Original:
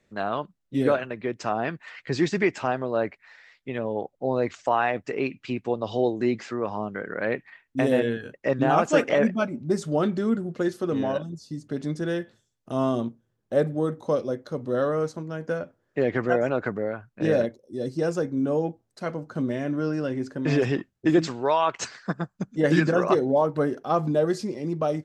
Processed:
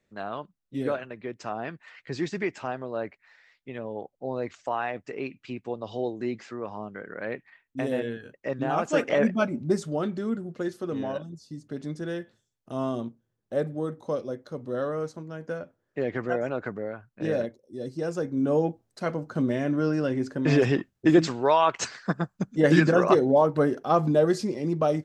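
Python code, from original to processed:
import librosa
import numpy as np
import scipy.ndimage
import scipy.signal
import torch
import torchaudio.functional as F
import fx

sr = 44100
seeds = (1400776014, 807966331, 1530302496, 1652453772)

y = fx.gain(x, sr, db=fx.line((8.69, -6.5), (9.6, 2.5), (9.96, -5.0), (18.05, -5.0), (18.56, 1.5)))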